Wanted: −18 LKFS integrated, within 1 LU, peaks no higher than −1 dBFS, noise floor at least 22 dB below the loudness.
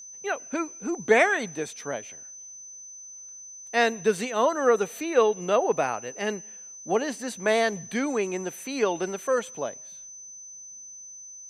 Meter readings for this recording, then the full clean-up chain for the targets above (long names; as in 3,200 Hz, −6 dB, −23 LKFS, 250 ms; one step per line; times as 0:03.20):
interfering tone 6,100 Hz; level of the tone −41 dBFS; integrated loudness −26.0 LKFS; sample peak −6.5 dBFS; target loudness −18.0 LKFS
→ notch filter 6,100 Hz, Q 30
level +8 dB
brickwall limiter −1 dBFS